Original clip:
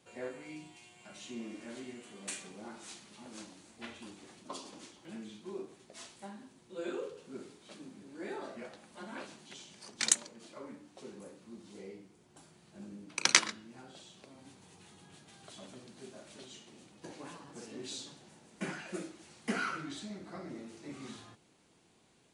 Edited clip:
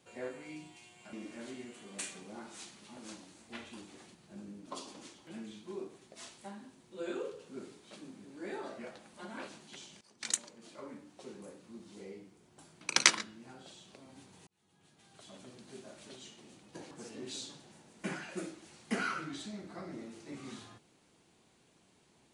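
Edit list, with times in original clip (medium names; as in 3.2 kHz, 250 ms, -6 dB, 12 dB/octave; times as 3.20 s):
1.13–1.42 s: delete
9.79–10.55 s: fade in, from -18 dB
12.59–13.10 s: move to 4.44 s
14.76–15.94 s: fade in
17.20–17.48 s: delete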